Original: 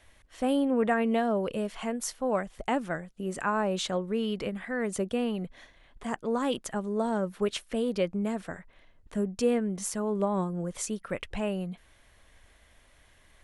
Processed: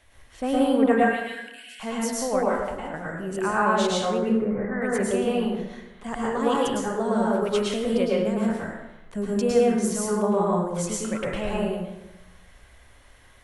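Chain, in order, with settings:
0:00.92–0:01.80: Chebyshev high-pass filter 1,500 Hz, order 10
0:02.50–0:02.94: downward compressor 12 to 1, threshold −37 dBFS, peak gain reduction 14.5 dB
0:04.18–0:04.82: Butterworth low-pass 2,000 Hz 72 dB per octave
dense smooth reverb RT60 1 s, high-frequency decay 0.6×, pre-delay 95 ms, DRR −5.5 dB

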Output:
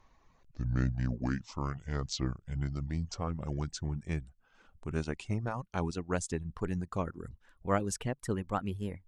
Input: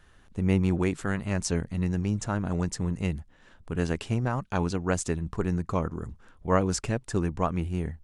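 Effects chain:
gliding playback speed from 62% → 115%
reverb reduction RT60 0.64 s
level −5.5 dB

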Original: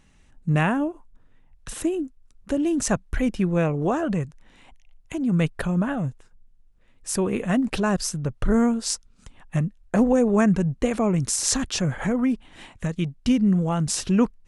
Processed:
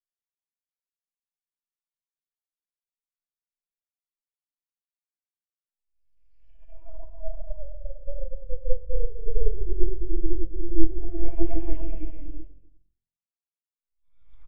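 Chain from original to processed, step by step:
high-pass filter 140 Hz 6 dB per octave
in parallel at −0.5 dB: downward compressor, threshold −31 dBFS, peak gain reduction 15 dB
on the sum: extreme stretch with random phases 17×, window 0.10 s, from 0:04.74
full-wave rectification
on a send: echo with shifted repeats 110 ms, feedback 60%, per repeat +43 Hz, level −14 dB
on the sum: every bin expanded away from the loudest bin 2.5 to 1
level +6.5 dB

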